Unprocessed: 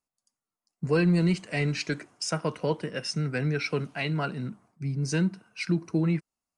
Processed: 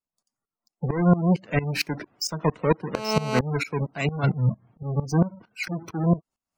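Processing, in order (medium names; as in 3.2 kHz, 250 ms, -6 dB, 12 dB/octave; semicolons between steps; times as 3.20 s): square wave that keeps the level; spectral gate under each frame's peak -20 dB strong; 2.95–3.39 s: mobile phone buzz -26 dBFS; 4.23–4.83 s: peaking EQ 120 Hz +14 dB 0.73 oct; sawtooth tremolo in dB swelling 4.4 Hz, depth 18 dB; trim +5.5 dB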